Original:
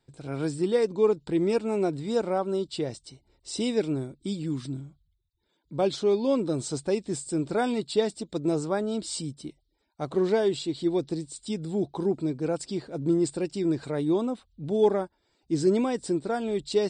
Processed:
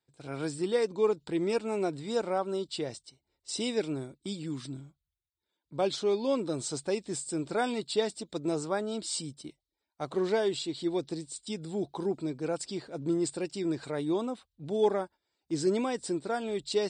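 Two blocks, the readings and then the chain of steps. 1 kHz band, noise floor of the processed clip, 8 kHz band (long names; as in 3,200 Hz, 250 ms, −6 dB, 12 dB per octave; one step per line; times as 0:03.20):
−2.0 dB, below −85 dBFS, 0.0 dB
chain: noise gate −44 dBFS, range −9 dB
high-pass filter 46 Hz
low-shelf EQ 490 Hz −7.5 dB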